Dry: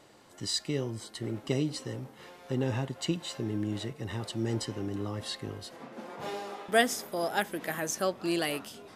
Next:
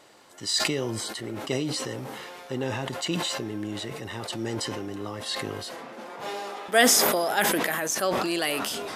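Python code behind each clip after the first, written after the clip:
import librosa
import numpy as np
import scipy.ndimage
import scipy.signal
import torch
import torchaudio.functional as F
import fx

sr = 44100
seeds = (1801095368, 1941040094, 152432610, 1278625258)

y = fx.low_shelf(x, sr, hz=280.0, db=-11.5)
y = fx.sustainer(y, sr, db_per_s=21.0)
y = F.gain(torch.from_numpy(y), 5.0).numpy()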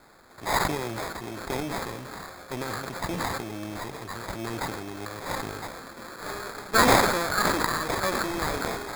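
y = fx.lower_of_two(x, sr, delay_ms=0.6)
y = fx.low_shelf(y, sr, hz=340.0, db=-9.5)
y = fx.sample_hold(y, sr, seeds[0], rate_hz=2900.0, jitter_pct=0)
y = F.gain(torch.from_numpy(y), 3.0).numpy()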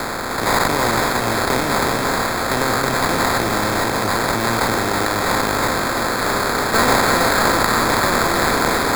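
y = fx.bin_compress(x, sr, power=0.4)
y = y + 10.0 ** (-5.0 / 20.0) * np.pad(y, (int(324 * sr / 1000.0), 0))[:len(y)]
y = fx.band_squash(y, sr, depth_pct=40)
y = F.gain(torch.from_numpy(y), 1.0).numpy()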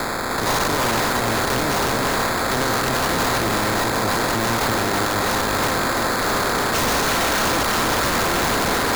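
y = 10.0 ** (-14.5 / 20.0) * (np.abs((x / 10.0 ** (-14.5 / 20.0) + 3.0) % 4.0 - 2.0) - 1.0)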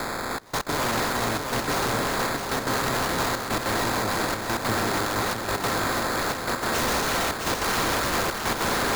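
y = fx.step_gate(x, sr, bpm=197, pattern='xxxxx..x.xxxx', floor_db=-24.0, edge_ms=4.5)
y = y + 10.0 ** (-5.0 / 20.0) * np.pad(y, (int(666 * sr / 1000.0), 0))[:len(y)]
y = F.gain(torch.from_numpy(y), -5.5).numpy()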